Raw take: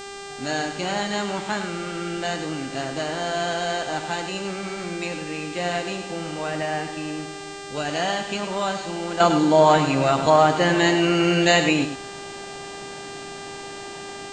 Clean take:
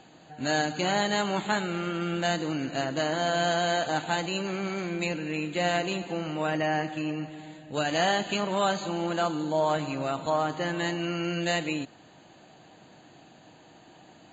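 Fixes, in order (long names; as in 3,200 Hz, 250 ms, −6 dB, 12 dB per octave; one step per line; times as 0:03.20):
hum removal 398.2 Hz, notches 22
downward expander −28 dBFS, range −21 dB
echo removal 102 ms −9.5 dB
level 0 dB, from 0:09.20 −10.5 dB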